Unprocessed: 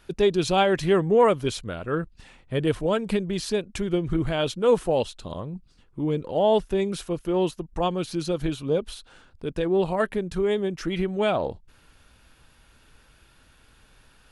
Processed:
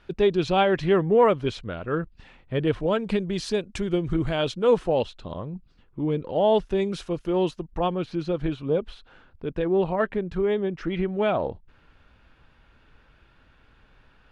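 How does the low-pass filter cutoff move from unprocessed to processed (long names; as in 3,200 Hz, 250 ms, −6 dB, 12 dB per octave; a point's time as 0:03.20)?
0:02.76 3,600 Hz
0:03.51 7,500 Hz
0:04.20 7,500 Hz
0:05.27 3,200 Hz
0:05.99 3,200 Hz
0:06.81 5,800 Hz
0:07.48 5,800 Hz
0:07.94 2,700 Hz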